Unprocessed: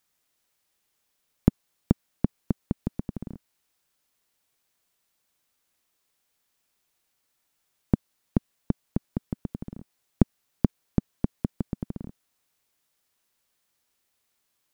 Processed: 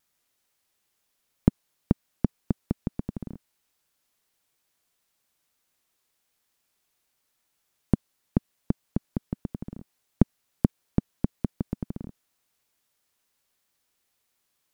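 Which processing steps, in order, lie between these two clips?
vibrato 3.1 Hz 35 cents

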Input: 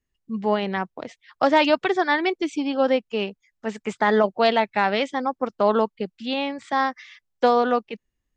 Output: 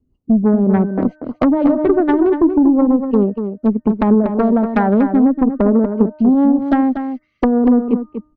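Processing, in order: Wiener smoothing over 25 samples; de-hum 304.9 Hz, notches 6; rotary speaker horn 5 Hz, later 0.6 Hz, at 2; fifteen-band EQ 100 Hz +7 dB, 250 Hz +11 dB, 2500 Hz -9 dB; compressor 6:1, threshold -23 dBFS, peak gain reduction 11.5 dB; treble ducked by the level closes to 450 Hz, closed at -21.5 dBFS; added harmonics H 2 -8 dB, 5 -12 dB, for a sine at -12 dBFS; outdoor echo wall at 41 m, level -8 dB; gain +8.5 dB

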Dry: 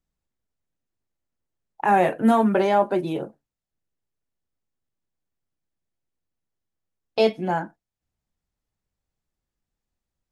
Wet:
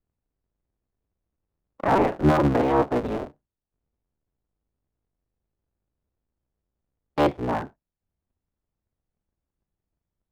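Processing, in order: cycle switcher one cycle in 3, inverted; LPF 1000 Hz 6 dB/oct

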